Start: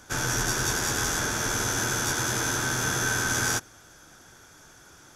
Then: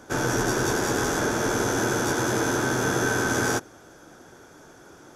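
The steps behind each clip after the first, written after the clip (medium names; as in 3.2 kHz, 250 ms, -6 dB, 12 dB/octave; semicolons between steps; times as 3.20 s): peaking EQ 400 Hz +14 dB 3 oct; trim -4 dB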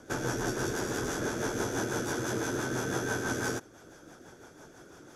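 in parallel at +3 dB: compression, threshold -34 dBFS, peak gain reduction 13 dB; on the sum: rotary cabinet horn 6 Hz; trim -8.5 dB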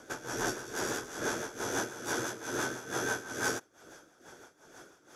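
bass shelf 310 Hz -11.5 dB; tremolo 2.3 Hz, depth 80%; trim +3.5 dB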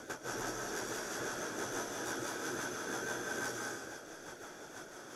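reverb removal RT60 0.5 s; compression 3:1, threshold -46 dBFS, peak gain reduction 14 dB; reverberation RT60 1.4 s, pre-delay 120 ms, DRR -0.5 dB; trim +4 dB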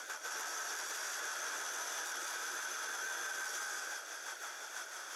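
high-pass 1.1 kHz 12 dB/octave; peak limiter -39 dBFS, peak gain reduction 10.5 dB; trim +7.5 dB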